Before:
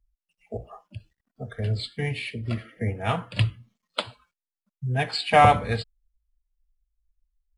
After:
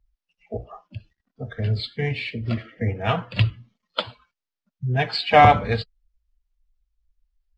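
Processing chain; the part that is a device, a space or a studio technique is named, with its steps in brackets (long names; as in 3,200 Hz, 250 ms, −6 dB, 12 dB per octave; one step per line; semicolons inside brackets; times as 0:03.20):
clip after many re-uploads (low-pass filter 5,700 Hz 24 dB per octave; spectral magnitudes quantised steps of 15 dB)
level +3.5 dB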